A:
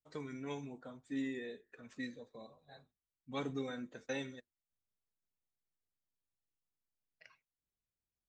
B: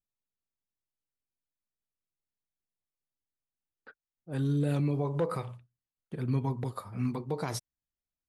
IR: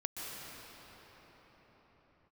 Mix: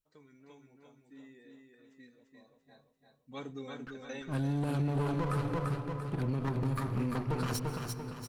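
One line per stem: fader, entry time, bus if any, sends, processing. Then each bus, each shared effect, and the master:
0:02.20 −15 dB → 0:02.89 −3.5 dB, 0.00 s, no send, echo send −4 dB, no processing
+1.0 dB, 0.00 s, send −9 dB, echo send −4 dB, lower of the sound and its delayed copy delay 0.7 ms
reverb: on, pre-delay 116 ms
echo: repeating echo 342 ms, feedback 46%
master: brickwall limiter −24 dBFS, peak gain reduction 9 dB

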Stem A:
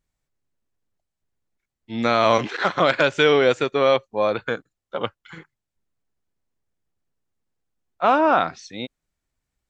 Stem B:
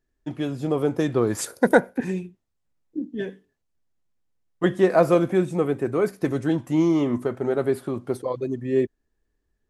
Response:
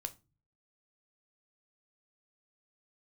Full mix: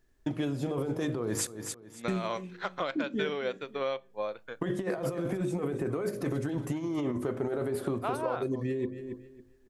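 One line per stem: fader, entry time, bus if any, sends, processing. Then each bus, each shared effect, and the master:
−6.5 dB, 0.00 s, send −5 dB, no echo send, low-shelf EQ 190 Hz −6.5 dB; expander for the loud parts 2.5 to 1, over −29 dBFS
+1.5 dB, 0.00 s, muted 0:01.47–0:02.08, send −7.5 dB, echo send −13 dB, hum removal 51.41 Hz, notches 12; compressor whose output falls as the input rises −26 dBFS, ratio −1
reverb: on, RT60 0.30 s, pre-delay 8 ms
echo: repeating echo 275 ms, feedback 21%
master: downward compressor 4 to 1, threshold −30 dBFS, peak gain reduction 13 dB

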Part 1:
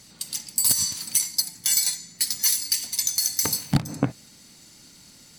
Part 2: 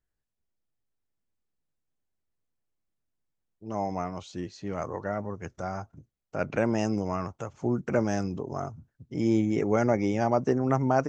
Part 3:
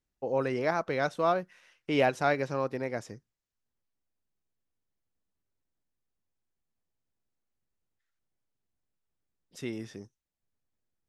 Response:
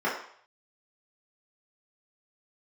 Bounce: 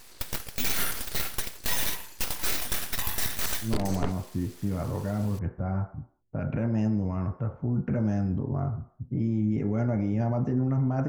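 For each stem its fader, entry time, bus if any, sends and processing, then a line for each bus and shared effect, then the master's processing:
+2.0 dB, 0.00 s, no send, full-wave rectification
−2.5 dB, 0.00 s, send −18 dB, low-pass that shuts in the quiet parts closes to 800 Hz, open at −21 dBFS; bass and treble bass +15 dB, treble −8 dB; brickwall limiter −17.5 dBFS, peak gain reduction 11.5 dB
muted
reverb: on, RT60 0.60 s, pre-delay 3 ms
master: brickwall limiter −14 dBFS, peak gain reduction 10.5 dB

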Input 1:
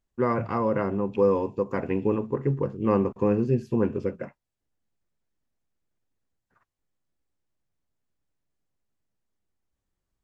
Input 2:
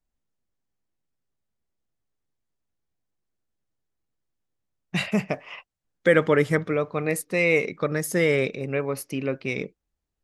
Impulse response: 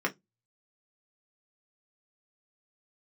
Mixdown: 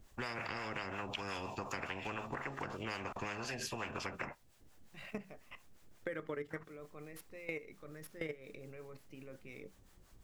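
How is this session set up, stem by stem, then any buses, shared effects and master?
−2.5 dB, 0.00 s, no send, two-band tremolo in antiphase 5.6 Hz, depth 70%, crossover 510 Hz; every bin compressed towards the loudest bin 10 to 1
−13.0 dB, 0.00 s, send −14.5 dB, running median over 5 samples; output level in coarse steps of 20 dB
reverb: on, RT60 0.15 s, pre-delay 3 ms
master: downward compressor 6 to 1, threshold −38 dBFS, peak gain reduction 11.5 dB

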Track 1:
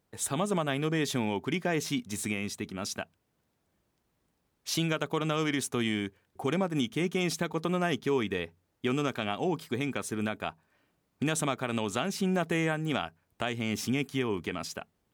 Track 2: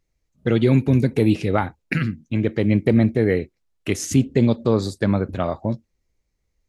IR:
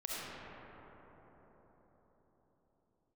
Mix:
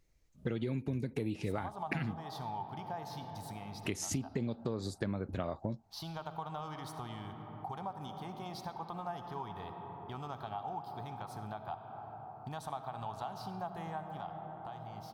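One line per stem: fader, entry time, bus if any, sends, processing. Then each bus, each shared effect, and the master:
0:14.00 −3.5 dB → 0:14.37 −12.5 dB, 1.25 s, send −7.5 dB, drawn EQ curve 110 Hz 0 dB, 270 Hz −16 dB, 530 Hz −12 dB, 810 Hz +10 dB, 1,500 Hz −9 dB, 2,400 Hz −19 dB, 4,500 Hz −2 dB, 7,100 Hz −20 dB, 14,000 Hz −7 dB
+1.0 dB, 0.00 s, muted 0:02.25–0:03.80, no send, downward compressor, threshold −20 dBFS, peak gain reduction 9 dB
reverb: on, RT60 4.9 s, pre-delay 25 ms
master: downward compressor 2 to 1, threshold −43 dBFS, peak gain reduction 14 dB

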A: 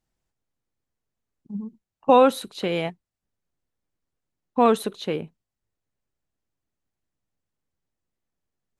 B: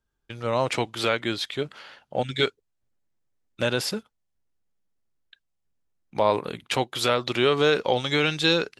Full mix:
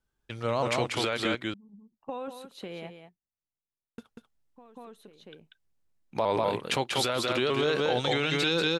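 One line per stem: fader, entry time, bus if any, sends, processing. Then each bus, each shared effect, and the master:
−11.0 dB, 0.00 s, no send, echo send −9 dB, downward compressor 3 to 1, threshold −26 dBFS, peak gain reduction 12 dB; automatic ducking −18 dB, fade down 1.05 s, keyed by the second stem
−1.0 dB, 0.00 s, muted 0:01.35–0:03.98, no send, echo send −5 dB, pitch modulation by a square or saw wave saw up 3.2 Hz, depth 100 cents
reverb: not used
echo: single-tap delay 190 ms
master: brickwall limiter −16 dBFS, peak gain reduction 11 dB

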